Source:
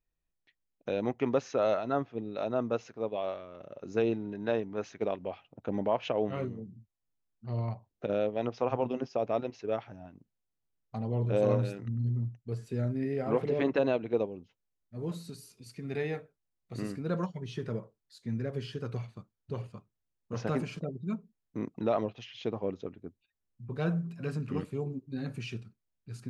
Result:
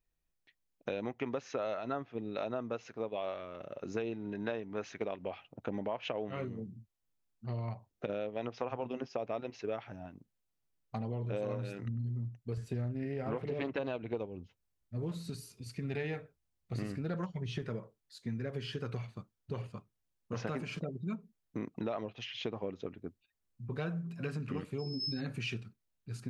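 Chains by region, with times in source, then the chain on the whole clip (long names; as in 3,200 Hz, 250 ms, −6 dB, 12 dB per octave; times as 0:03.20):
0:12.57–0:17.62: parametric band 61 Hz +13.5 dB 1.7 octaves + highs frequency-modulated by the lows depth 0.18 ms
0:24.78–0:25.19: steady tone 5,200 Hz −45 dBFS + background raised ahead of every attack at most 31 dB per second
whole clip: downward compressor, threshold −35 dBFS; dynamic equaliser 2,200 Hz, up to +5 dB, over −58 dBFS, Q 0.74; level +1 dB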